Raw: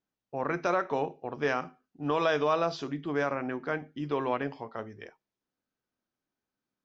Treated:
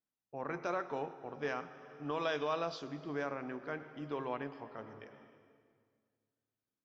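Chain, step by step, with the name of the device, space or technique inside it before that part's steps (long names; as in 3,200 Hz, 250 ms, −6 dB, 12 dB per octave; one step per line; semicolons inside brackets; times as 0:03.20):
compressed reverb return (on a send at −6 dB: convolution reverb RT60 1.9 s, pre-delay 88 ms + downward compressor, threshold −34 dBFS, peak gain reduction 10.5 dB)
0:02.25–0:02.79: on the sum: parametric band 3,700 Hz +4 dB 1.5 octaves
level −9 dB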